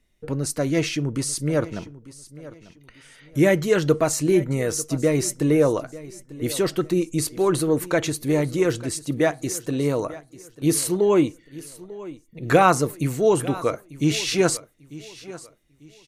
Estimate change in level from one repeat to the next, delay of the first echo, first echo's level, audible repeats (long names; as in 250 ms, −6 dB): −10.0 dB, 894 ms, −18.0 dB, 2